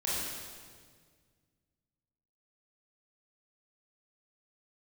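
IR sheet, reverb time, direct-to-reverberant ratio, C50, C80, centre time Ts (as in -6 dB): 1.8 s, -8.0 dB, -3.0 dB, 0.0 dB, 0.121 s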